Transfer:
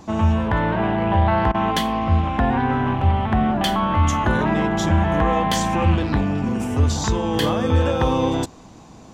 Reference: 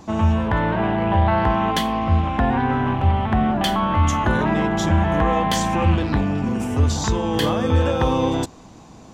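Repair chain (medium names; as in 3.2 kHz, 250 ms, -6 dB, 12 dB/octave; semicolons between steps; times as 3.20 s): interpolate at 1.52 s, 23 ms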